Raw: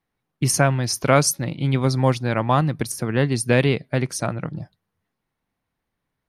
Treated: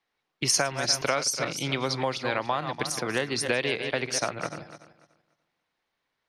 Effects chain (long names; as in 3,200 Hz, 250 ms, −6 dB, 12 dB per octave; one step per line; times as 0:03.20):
feedback delay that plays each chunk backwards 145 ms, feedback 46%, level −10.5 dB
three-way crossover with the lows and the highs turned down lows −14 dB, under 330 Hz, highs −22 dB, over 5,500 Hz
downward compressor 5 to 1, threshold −25 dBFS, peak gain reduction 12.5 dB
high-shelf EQ 3,100 Hz +12 dB